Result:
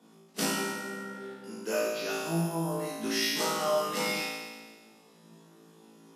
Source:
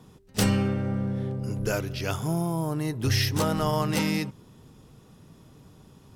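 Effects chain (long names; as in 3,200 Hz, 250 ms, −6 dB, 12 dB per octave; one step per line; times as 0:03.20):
Butterworth high-pass 180 Hz 48 dB per octave
on a send: flutter between parallel walls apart 3.1 metres, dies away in 1.4 s
on the sum: level −8 dB
MP3 56 kbit/s 32,000 Hz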